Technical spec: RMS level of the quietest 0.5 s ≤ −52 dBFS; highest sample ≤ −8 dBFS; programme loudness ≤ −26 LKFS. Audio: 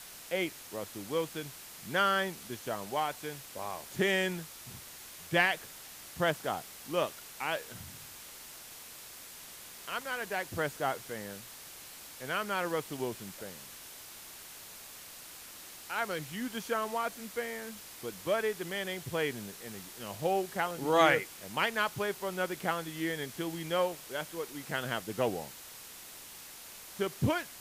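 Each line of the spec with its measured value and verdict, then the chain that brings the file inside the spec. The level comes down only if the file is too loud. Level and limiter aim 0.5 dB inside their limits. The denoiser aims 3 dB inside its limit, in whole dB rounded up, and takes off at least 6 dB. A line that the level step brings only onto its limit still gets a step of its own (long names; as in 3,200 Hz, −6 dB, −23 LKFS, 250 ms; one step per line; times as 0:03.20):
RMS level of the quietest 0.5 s −49 dBFS: out of spec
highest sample −11.5 dBFS: in spec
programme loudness −34.0 LKFS: in spec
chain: broadband denoise 6 dB, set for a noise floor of −49 dBFS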